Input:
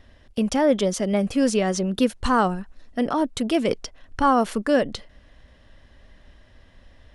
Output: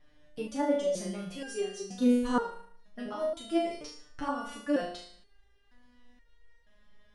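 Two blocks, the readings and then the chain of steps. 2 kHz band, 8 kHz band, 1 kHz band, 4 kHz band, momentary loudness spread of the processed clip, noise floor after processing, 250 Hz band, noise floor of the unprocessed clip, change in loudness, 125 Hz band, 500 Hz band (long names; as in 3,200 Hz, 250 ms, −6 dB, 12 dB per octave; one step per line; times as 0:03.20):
−11.0 dB, −11.5 dB, −13.0 dB, −11.0 dB, 17 LU, −64 dBFS, −8.5 dB, −54 dBFS, −9.5 dB, −16.5 dB, −9.0 dB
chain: flutter between parallel walls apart 6.3 metres, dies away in 0.58 s
step-sequenced resonator 2.1 Hz 150–470 Hz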